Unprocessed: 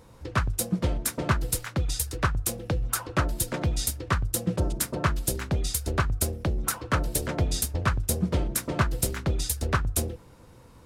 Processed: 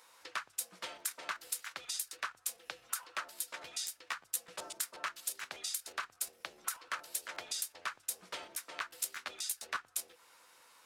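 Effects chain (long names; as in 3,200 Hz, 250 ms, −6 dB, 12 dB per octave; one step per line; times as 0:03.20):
high-pass filter 1,300 Hz 12 dB per octave
downward compressor 3 to 1, threshold −39 dBFS, peak gain reduction 12 dB
regular buffer underruns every 0.12 s, samples 512, repeat, from 0:00.98
level +1 dB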